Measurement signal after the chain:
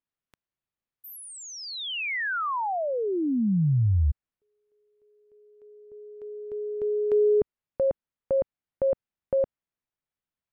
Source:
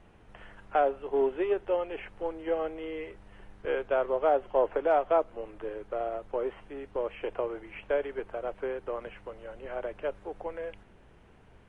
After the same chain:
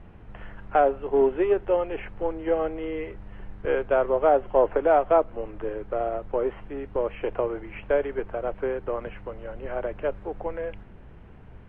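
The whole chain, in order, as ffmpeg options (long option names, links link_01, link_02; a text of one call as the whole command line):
ffmpeg -i in.wav -af "bass=frequency=250:gain=7,treble=frequency=4000:gain=-15,volume=5dB" out.wav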